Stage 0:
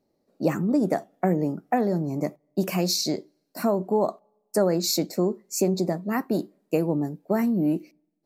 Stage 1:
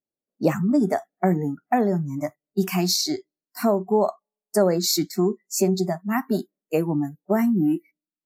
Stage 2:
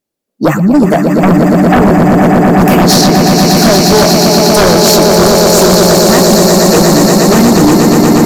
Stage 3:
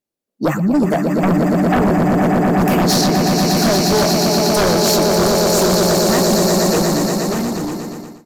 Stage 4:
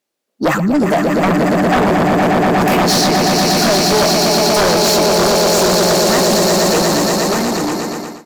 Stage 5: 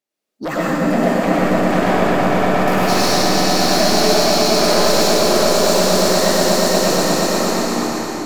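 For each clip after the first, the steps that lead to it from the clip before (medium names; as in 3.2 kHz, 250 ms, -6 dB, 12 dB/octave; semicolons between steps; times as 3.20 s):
spectral noise reduction 27 dB; trim +3 dB
echo with a slow build-up 119 ms, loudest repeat 8, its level -6 dB; sine folder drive 9 dB, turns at -4 dBFS; trim +2 dB
fade out at the end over 1.64 s; trim -8 dB
overdrive pedal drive 17 dB, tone 5.8 kHz, clips at -9 dBFS; trim +1.5 dB
algorithmic reverb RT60 2.7 s, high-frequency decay 0.95×, pre-delay 55 ms, DRR -7.5 dB; trim -10 dB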